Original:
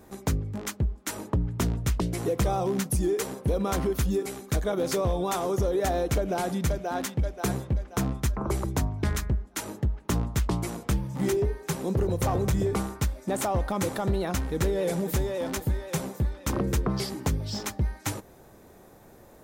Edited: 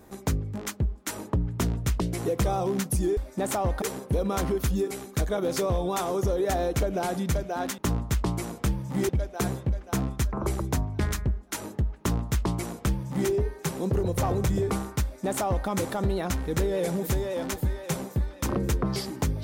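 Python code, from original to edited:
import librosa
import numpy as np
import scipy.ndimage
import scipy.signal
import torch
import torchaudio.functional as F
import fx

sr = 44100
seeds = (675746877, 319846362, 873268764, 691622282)

y = fx.edit(x, sr, fx.duplicate(start_s=10.03, length_s=1.31, to_s=7.13),
    fx.duplicate(start_s=13.07, length_s=0.65, to_s=3.17), tone=tone)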